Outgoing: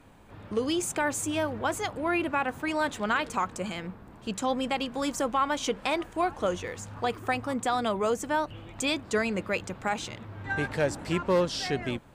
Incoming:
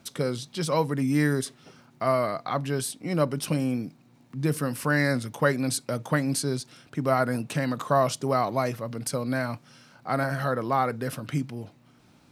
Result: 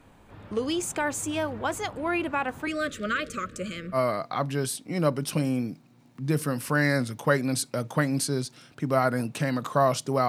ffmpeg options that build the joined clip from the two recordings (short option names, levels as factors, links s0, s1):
-filter_complex "[0:a]asettb=1/sr,asplit=3[s0][s1][s2];[s0]atrim=end=2.674[s3];[s1]atrim=start=2.67:end=3.98,asetpts=PTS-STARTPTS,afade=t=in:d=0.004:c=qsin,afade=t=out:st=1.306:d=0.004:c=qsin,asuperstop=centerf=850:order=20:qfactor=1.7[s4];[s2]atrim=start=3.976[s5];[s3][s4]acrossfade=d=0.004:c1=hsin:c2=qsin[s6];[s6][s5]acrossfade=d=0.004:c1=qsin:c2=hsin,apad=whole_dur=10.28,atrim=end=10.28,atrim=end=3.98,asetpts=PTS-STARTPTS[s7];[1:a]atrim=start=2.07:end=8.43,asetpts=PTS-STARTPTS[s8];[s7][s8]acrossfade=d=0.06:c1=tri:c2=tri"